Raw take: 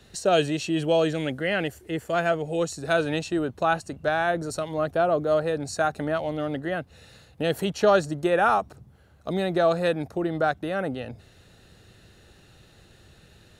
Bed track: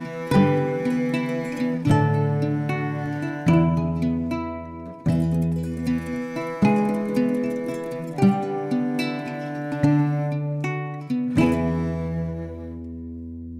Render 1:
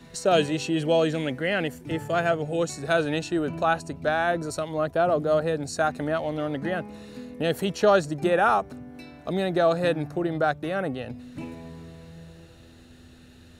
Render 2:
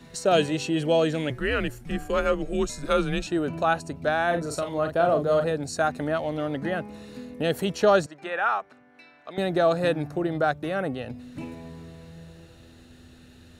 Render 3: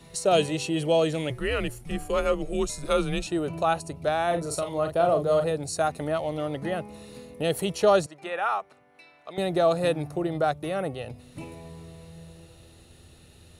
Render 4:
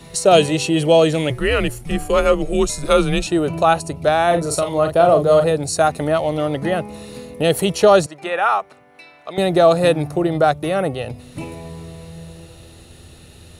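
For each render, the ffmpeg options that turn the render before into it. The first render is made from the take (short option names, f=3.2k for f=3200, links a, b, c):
-filter_complex "[1:a]volume=-18.5dB[a];[0:a][a]amix=inputs=2:normalize=0"
-filter_complex "[0:a]asettb=1/sr,asplit=3[a][b][c];[a]atrim=end=1.304[d];[b]atrim=start=1.3:end=3.27,asetpts=PTS-STARTPTS,afade=t=in:d=0.004:c=qsin,afade=t=out:st=1.966:d=0.004:c=qsin,afreqshift=-130[e];[c]atrim=start=3.266[f];[d][e]acrossfade=d=0.004:c1=hsin:c2=qsin[g];[g][f]acrossfade=d=0.004:c1=qsin:c2=hsin,asettb=1/sr,asplit=3[h][i][j];[h]atrim=end=4.274[k];[i]atrim=start=4.27:end=5.51,asetpts=PTS-STARTPTS,afade=t=in:d=0.004:c=qsin,afade=t=out:st=1.236:d=0.004:c=qsin,asplit=2[l][m];[m]adelay=41,volume=-6.5dB[n];[l][n]amix=inputs=2:normalize=0,atrim=end_sample=54684[o];[j]atrim=start=5.506[p];[k][o]acrossfade=d=0.004:c1=hsin:c2=qsin[q];[q][p]acrossfade=d=0.004:c1=qsin:c2=hsin,asettb=1/sr,asplit=3[r][s][t];[r]atrim=end=8.064[u];[s]atrim=start=8.06:end=9.38,asetpts=PTS-STARTPTS,afade=t=in:d=0.004:c=qsin,afade=t=out:st=1.316:d=0.004:c=qsin,bandpass=f=1.8k:t=q:w=0.96[v];[t]atrim=start=9.376[w];[u][v]acrossfade=d=0.004:c1=hsin:c2=qsin[x];[x][w]acrossfade=d=0.004:c1=qsin:c2=hsin"
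-af "equalizer=f=250:t=o:w=0.33:g=-11,equalizer=f=1.6k:t=o:w=0.33:g=-9,equalizer=f=10k:t=o:w=0.33:g=11"
-af "volume=9.5dB,alimiter=limit=-2dB:level=0:latency=1"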